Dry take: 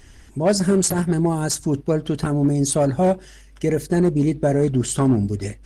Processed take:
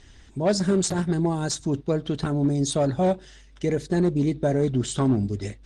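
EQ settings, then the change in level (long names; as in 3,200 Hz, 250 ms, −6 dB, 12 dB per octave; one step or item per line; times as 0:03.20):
low-pass filter 7,800 Hz 24 dB per octave
parametric band 3,700 Hz +9.5 dB 0.26 octaves
−4.0 dB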